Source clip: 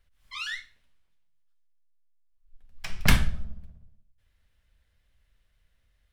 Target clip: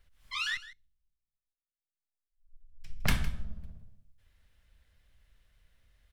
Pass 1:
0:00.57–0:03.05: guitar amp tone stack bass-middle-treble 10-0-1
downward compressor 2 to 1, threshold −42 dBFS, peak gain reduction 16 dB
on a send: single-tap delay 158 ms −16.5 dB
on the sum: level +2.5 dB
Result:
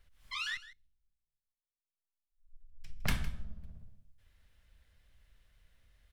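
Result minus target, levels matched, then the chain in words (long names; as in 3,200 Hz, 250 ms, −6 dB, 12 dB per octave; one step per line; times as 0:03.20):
downward compressor: peak gain reduction +4.5 dB
0:00.57–0:03.05: guitar amp tone stack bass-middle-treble 10-0-1
downward compressor 2 to 1, threshold −33 dBFS, peak gain reduction 11.5 dB
on a send: single-tap delay 158 ms −16.5 dB
on the sum: level +2.5 dB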